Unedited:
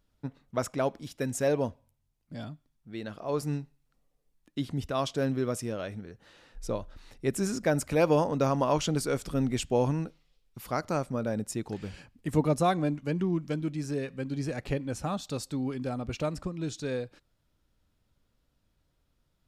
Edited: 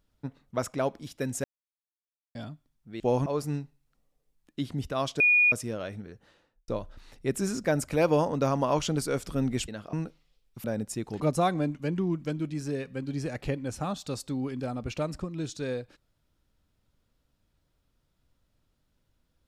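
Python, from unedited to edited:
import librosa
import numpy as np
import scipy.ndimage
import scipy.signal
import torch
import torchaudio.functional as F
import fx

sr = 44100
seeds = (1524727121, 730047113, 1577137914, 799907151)

y = fx.studio_fade_out(x, sr, start_s=6.1, length_s=0.57)
y = fx.edit(y, sr, fx.silence(start_s=1.44, length_s=0.91),
    fx.swap(start_s=3.0, length_s=0.25, other_s=9.67, other_length_s=0.26),
    fx.bleep(start_s=5.19, length_s=0.32, hz=2450.0, db=-17.5),
    fx.cut(start_s=10.64, length_s=0.59),
    fx.cut(start_s=11.79, length_s=0.64), tone=tone)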